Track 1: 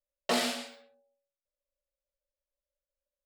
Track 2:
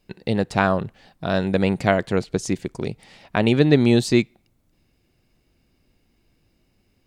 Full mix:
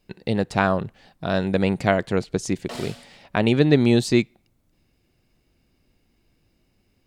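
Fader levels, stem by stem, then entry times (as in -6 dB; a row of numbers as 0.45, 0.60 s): -7.5, -1.0 dB; 2.40, 0.00 s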